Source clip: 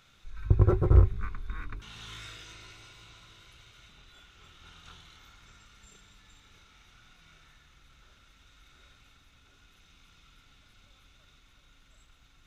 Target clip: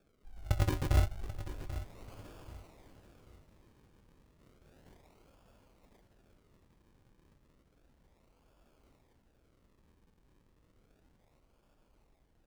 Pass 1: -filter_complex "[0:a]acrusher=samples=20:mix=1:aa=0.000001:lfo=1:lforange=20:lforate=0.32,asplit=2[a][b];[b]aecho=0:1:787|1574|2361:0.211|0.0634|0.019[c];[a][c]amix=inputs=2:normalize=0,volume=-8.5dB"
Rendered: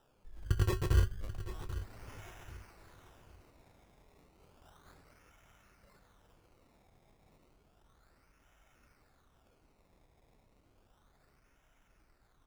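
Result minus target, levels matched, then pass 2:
decimation with a swept rate: distortion -6 dB
-filter_complex "[0:a]acrusher=samples=44:mix=1:aa=0.000001:lfo=1:lforange=44:lforate=0.32,asplit=2[a][b];[b]aecho=0:1:787|1574|2361:0.211|0.0634|0.019[c];[a][c]amix=inputs=2:normalize=0,volume=-8.5dB"

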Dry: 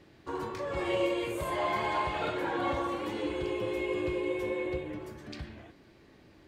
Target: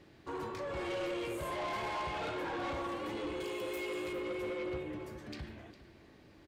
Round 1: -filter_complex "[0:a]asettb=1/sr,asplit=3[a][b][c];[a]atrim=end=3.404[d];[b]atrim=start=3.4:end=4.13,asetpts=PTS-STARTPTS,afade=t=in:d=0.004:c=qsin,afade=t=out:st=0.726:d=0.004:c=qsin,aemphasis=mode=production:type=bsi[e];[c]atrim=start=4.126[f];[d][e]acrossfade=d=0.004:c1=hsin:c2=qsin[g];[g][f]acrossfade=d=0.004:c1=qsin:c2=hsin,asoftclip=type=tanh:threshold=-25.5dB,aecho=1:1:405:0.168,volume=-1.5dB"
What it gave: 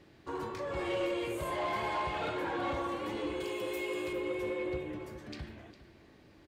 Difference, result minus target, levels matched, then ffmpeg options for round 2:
soft clip: distortion -7 dB
-filter_complex "[0:a]asettb=1/sr,asplit=3[a][b][c];[a]atrim=end=3.404[d];[b]atrim=start=3.4:end=4.13,asetpts=PTS-STARTPTS,afade=t=in:d=0.004:c=qsin,afade=t=out:st=0.726:d=0.004:c=qsin,aemphasis=mode=production:type=bsi[e];[c]atrim=start=4.126[f];[d][e]acrossfade=d=0.004:c1=hsin:c2=qsin[g];[g][f]acrossfade=d=0.004:c1=qsin:c2=hsin,asoftclip=type=tanh:threshold=-32.5dB,aecho=1:1:405:0.168,volume=-1.5dB"

